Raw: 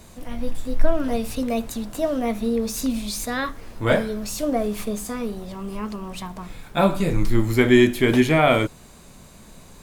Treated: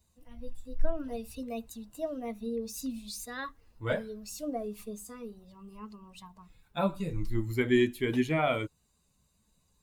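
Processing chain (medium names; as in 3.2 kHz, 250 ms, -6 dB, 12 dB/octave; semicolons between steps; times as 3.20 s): expander on every frequency bin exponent 1.5; trim -9 dB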